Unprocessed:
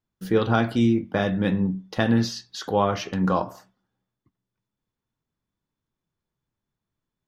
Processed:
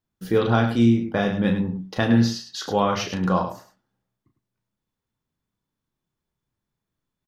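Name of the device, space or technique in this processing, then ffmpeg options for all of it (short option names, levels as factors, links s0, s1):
slapback doubling: -filter_complex "[0:a]asplit=3[s0][s1][s2];[s1]adelay=34,volume=0.473[s3];[s2]adelay=103,volume=0.355[s4];[s0][s3][s4]amix=inputs=3:normalize=0,asplit=3[s5][s6][s7];[s5]afade=t=out:st=2.51:d=0.02[s8];[s6]adynamicequalizer=threshold=0.02:dfrequency=1900:dqfactor=0.7:tfrequency=1900:tqfactor=0.7:attack=5:release=100:ratio=0.375:range=2:mode=boostabove:tftype=highshelf,afade=t=in:st=2.51:d=0.02,afade=t=out:st=3.29:d=0.02[s9];[s7]afade=t=in:st=3.29:d=0.02[s10];[s8][s9][s10]amix=inputs=3:normalize=0"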